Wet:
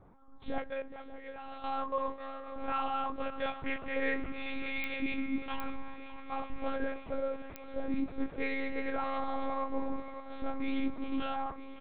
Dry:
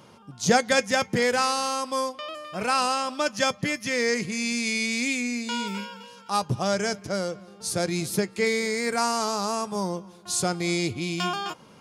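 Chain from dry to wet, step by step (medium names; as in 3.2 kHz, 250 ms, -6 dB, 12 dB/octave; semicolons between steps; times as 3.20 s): local Wiener filter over 15 samples; harmonic-percussive split percussive -15 dB; 0.68–1.64 s: level held to a coarse grid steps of 21 dB; peak limiter -21 dBFS, peak gain reduction 9 dB; flange 0.18 Hz, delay 5.6 ms, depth 4.3 ms, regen -90%; wow and flutter 17 cents; doubling 24 ms -3 dB; shuffle delay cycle 951 ms, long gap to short 1.5:1, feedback 61%, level -14 dB; monotone LPC vocoder at 8 kHz 270 Hz; clicks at 4.84/5.60/7.56 s, -24 dBFS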